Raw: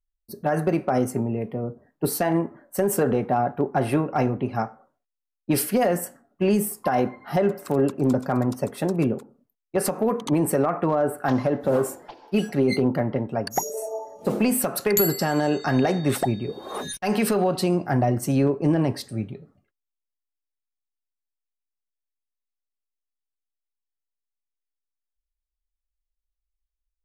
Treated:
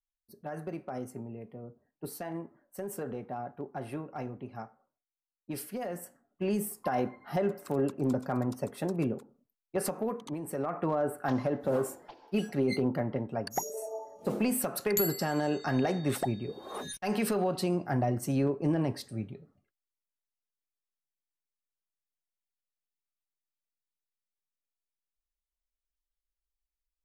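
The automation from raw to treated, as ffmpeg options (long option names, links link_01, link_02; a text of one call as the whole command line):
ffmpeg -i in.wav -af "volume=2.5dB,afade=type=in:start_time=5.84:duration=0.95:silence=0.398107,afade=type=out:start_time=9.9:duration=0.52:silence=0.316228,afade=type=in:start_time=10.42:duration=0.44:silence=0.298538" out.wav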